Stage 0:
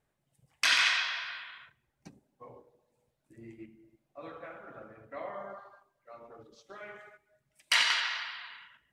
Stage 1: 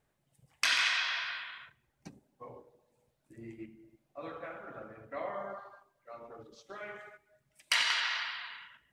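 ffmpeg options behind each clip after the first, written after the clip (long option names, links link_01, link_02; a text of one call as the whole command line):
ffmpeg -i in.wav -af "acompressor=threshold=-31dB:ratio=2,volume=2dB" out.wav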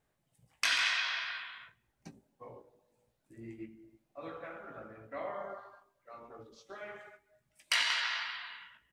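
ffmpeg -i in.wav -filter_complex "[0:a]asplit=2[link_01][link_02];[link_02]adelay=18,volume=-7.5dB[link_03];[link_01][link_03]amix=inputs=2:normalize=0,volume=-2dB" out.wav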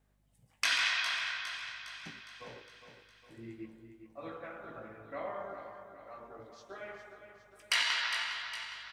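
ffmpeg -i in.wav -af "aeval=exprs='val(0)+0.000251*(sin(2*PI*50*n/s)+sin(2*PI*2*50*n/s)/2+sin(2*PI*3*50*n/s)/3+sin(2*PI*4*50*n/s)/4+sin(2*PI*5*50*n/s)/5)':channel_layout=same,aecho=1:1:409|818|1227|1636|2045|2454:0.335|0.181|0.0977|0.0527|0.0285|0.0154" out.wav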